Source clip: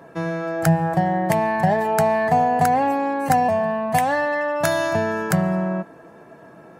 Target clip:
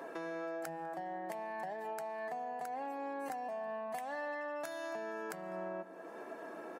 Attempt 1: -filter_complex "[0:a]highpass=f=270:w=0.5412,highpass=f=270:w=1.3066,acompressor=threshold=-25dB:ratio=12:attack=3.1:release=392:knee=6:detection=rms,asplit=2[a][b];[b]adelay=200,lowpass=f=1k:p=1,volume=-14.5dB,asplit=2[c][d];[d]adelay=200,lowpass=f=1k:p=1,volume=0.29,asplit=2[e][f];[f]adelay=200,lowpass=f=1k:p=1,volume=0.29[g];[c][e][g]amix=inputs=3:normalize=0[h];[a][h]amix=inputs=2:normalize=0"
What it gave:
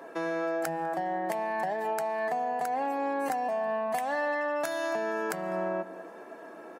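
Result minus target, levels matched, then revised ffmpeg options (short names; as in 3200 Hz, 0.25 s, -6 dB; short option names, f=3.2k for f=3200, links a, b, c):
compressor: peak gain reduction -10.5 dB
-filter_complex "[0:a]highpass=f=270:w=0.5412,highpass=f=270:w=1.3066,acompressor=threshold=-36.5dB:ratio=12:attack=3.1:release=392:knee=6:detection=rms,asplit=2[a][b];[b]adelay=200,lowpass=f=1k:p=1,volume=-14.5dB,asplit=2[c][d];[d]adelay=200,lowpass=f=1k:p=1,volume=0.29,asplit=2[e][f];[f]adelay=200,lowpass=f=1k:p=1,volume=0.29[g];[c][e][g]amix=inputs=3:normalize=0[h];[a][h]amix=inputs=2:normalize=0"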